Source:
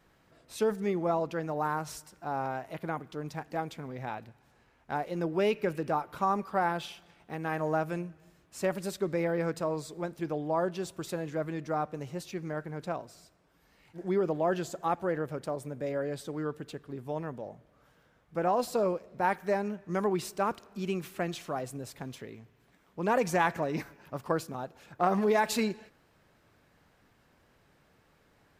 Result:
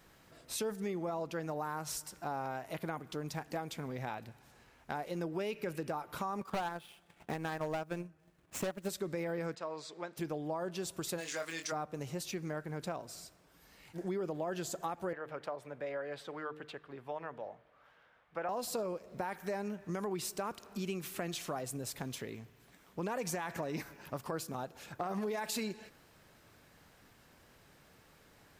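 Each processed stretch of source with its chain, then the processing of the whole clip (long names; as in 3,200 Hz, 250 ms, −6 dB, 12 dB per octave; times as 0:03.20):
0:06.41–0:08.89: running median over 9 samples + transient designer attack +9 dB, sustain −11 dB + gain into a clipping stage and back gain 22 dB
0:09.55–0:10.17: high-pass filter 990 Hz 6 dB per octave + high-frequency loss of the air 150 metres
0:11.17–0:11.71: meter weighting curve ITU-R 468 + surface crackle 180 per second −47 dBFS + double-tracking delay 24 ms −6 dB
0:15.13–0:18.49: three-way crossover with the lows and the highs turned down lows −14 dB, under 540 Hz, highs −22 dB, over 3,400 Hz + hum removal 152.3 Hz, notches 3
whole clip: high-shelf EQ 3,800 Hz +8 dB; brickwall limiter −21 dBFS; downward compressor 3 to 1, threshold −39 dBFS; level +2 dB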